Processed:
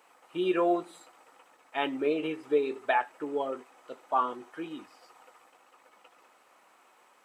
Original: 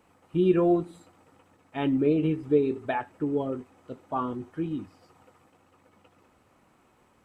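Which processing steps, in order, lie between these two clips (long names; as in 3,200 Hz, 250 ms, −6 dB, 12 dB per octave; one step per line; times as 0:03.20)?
high-pass filter 650 Hz 12 dB per octave
level +5 dB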